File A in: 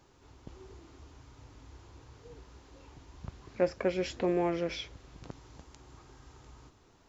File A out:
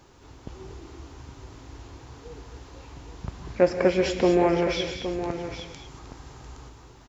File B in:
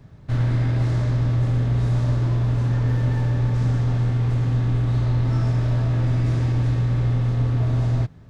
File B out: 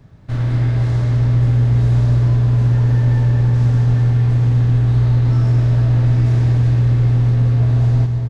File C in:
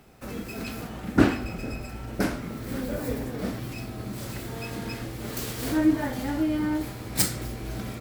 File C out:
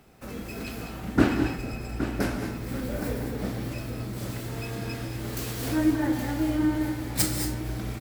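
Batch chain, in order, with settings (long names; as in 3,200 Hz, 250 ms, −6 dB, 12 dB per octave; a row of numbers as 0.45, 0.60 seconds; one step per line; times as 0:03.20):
on a send: single-tap delay 817 ms −10 dB
on the sum: reverb whose tail is shaped and stops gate 250 ms rising, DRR 5.5 dB
normalise the peak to −6 dBFS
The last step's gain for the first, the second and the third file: +8.0, +1.0, −2.0 decibels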